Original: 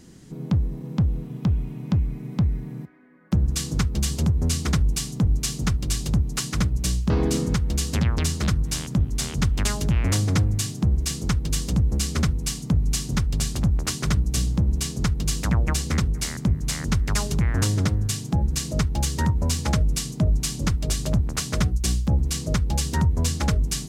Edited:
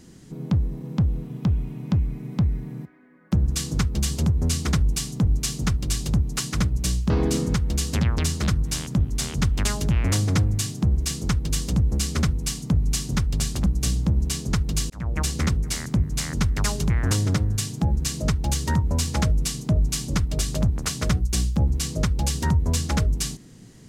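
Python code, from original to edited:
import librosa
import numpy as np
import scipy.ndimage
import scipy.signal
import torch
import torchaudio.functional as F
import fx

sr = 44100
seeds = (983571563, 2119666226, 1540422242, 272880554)

y = fx.edit(x, sr, fx.cut(start_s=13.66, length_s=0.51),
    fx.fade_in_span(start_s=15.41, length_s=0.36), tone=tone)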